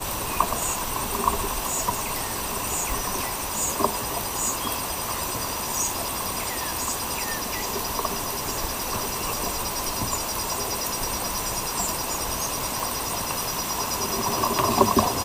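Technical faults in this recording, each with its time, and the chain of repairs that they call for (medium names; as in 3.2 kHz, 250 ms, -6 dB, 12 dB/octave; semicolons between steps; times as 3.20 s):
2.92 s: pop
12.80 s: pop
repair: de-click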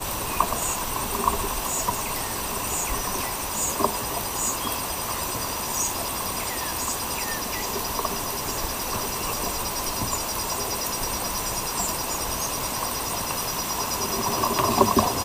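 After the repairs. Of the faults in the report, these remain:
nothing left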